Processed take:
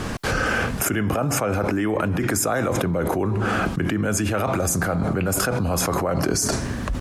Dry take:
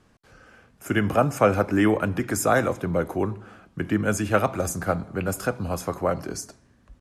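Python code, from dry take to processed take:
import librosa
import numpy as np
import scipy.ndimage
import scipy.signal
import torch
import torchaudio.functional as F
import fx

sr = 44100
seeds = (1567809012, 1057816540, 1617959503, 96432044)

y = fx.env_flatten(x, sr, amount_pct=100)
y = F.gain(torch.from_numpy(y), -8.0).numpy()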